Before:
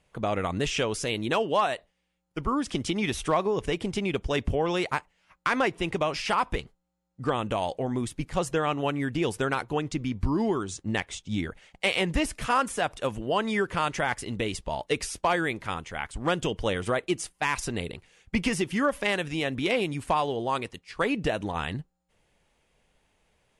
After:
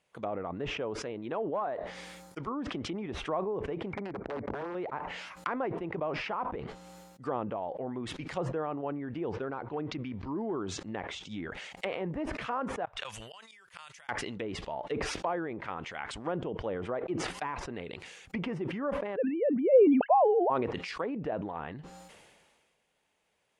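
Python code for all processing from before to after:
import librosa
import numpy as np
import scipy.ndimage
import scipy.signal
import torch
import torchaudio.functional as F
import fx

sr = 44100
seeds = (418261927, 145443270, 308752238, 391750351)

y = fx.chain(x, sr, fx.peak_eq(hz=2800.0, db=-8.5, octaves=0.37),
    fx.clip_hard(threshold_db=-18.0), at=(1.37, 2.53))
y = fx.chain(y, sr, fx.brickwall_lowpass(high_hz=2400.0),
    fx.overflow_wrap(gain_db=20.5), at=(3.93, 4.75))
y = fx.chain(y, sr, fx.lowpass(hz=5900.0, slope=24),
    fx.clip_hard(threshold_db=-19.0), at=(9.31, 10.65))
y = fx.chain(y, sr, fx.tone_stack(knobs='10-0-10'),
    fx.gate_flip(shuts_db=-29.0, range_db=-27), at=(12.85, 14.09))
y = fx.chain(y, sr, fx.sine_speech(),
    fx.band_shelf(hz=610.0, db=12.0, octaves=1.3), at=(19.16, 20.5))
y = fx.highpass(y, sr, hz=330.0, slope=6)
y = fx.env_lowpass_down(y, sr, base_hz=900.0, full_db=-27.0)
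y = fx.sustainer(y, sr, db_per_s=33.0)
y = F.gain(torch.from_numpy(y), -5.0).numpy()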